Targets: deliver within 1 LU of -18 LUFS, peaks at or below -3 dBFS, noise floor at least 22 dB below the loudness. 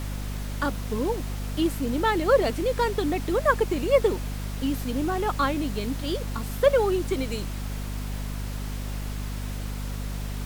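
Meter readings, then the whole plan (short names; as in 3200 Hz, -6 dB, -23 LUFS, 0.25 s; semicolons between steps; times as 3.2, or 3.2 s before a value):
hum 50 Hz; harmonics up to 250 Hz; hum level -29 dBFS; noise floor -32 dBFS; noise floor target -49 dBFS; loudness -27.0 LUFS; peak -8.0 dBFS; loudness target -18.0 LUFS
-> notches 50/100/150/200/250 Hz; noise print and reduce 17 dB; gain +9 dB; limiter -3 dBFS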